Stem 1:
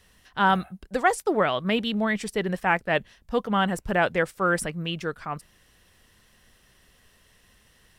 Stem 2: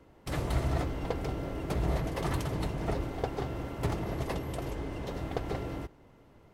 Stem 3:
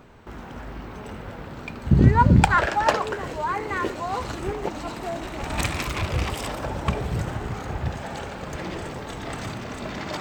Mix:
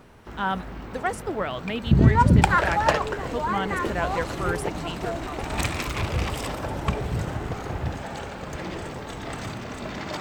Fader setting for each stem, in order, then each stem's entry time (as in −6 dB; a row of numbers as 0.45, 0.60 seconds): −6.0, −3.5, −1.0 decibels; 0.00, 2.15, 0.00 seconds